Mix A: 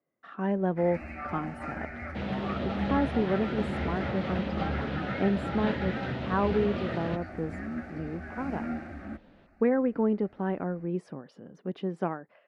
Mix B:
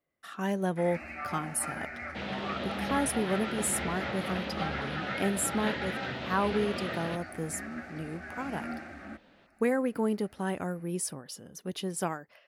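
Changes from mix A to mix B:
speech: remove band-pass 200–2300 Hz; master: add tilt EQ +2.5 dB/octave

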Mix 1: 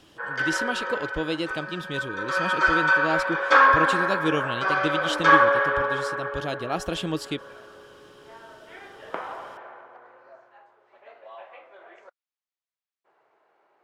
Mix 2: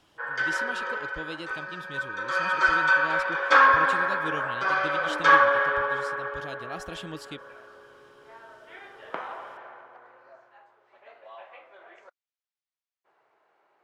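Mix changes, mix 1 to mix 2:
speech -8.0 dB; master: add peaking EQ 400 Hz -3.5 dB 2.3 oct

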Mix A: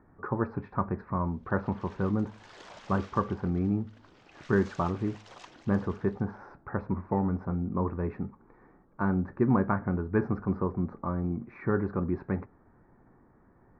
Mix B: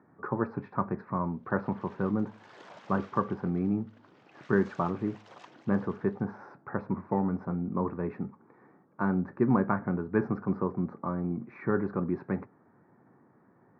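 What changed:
background: add treble shelf 3.3 kHz -10.5 dB; master: add high-pass 120 Hz 24 dB/octave

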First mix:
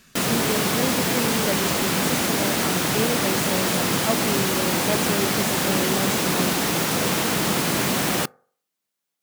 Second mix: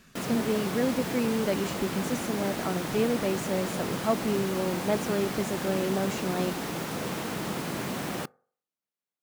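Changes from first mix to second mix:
background -8.5 dB; master: add treble shelf 2.2 kHz -7.5 dB

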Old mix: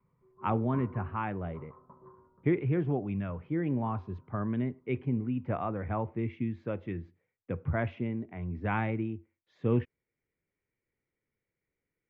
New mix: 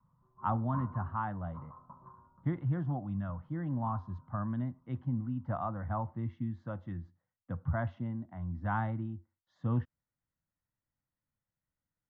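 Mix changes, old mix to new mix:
background +4.0 dB; master: add static phaser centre 1 kHz, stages 4

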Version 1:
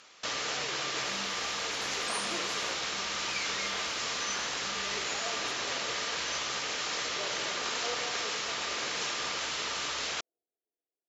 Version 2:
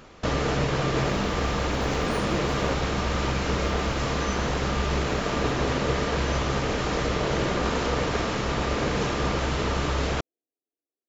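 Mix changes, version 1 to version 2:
speech: send -10.0 dB; first sound +8.5 dB; master: remove frequency weighting ITU-R 468

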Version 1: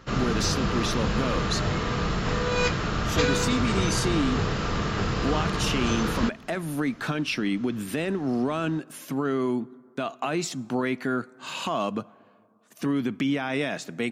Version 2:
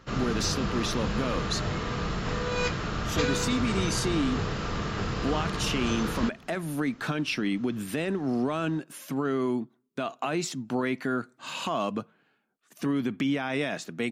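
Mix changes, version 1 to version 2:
speech: send off; background -4.0 dB

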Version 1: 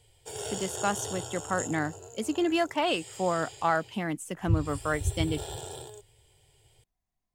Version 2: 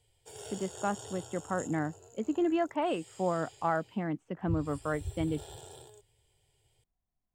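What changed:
speech: add tape spacing loss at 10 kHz 44 dB; background -9.0 dB

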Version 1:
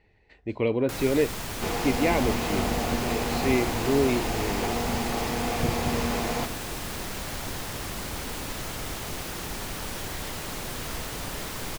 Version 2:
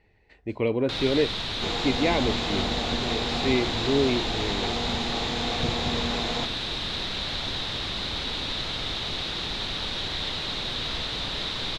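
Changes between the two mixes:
first sound: add resonant low-pass 3.8 kHz, resonance Q 7; second sound: send -11.0 dB

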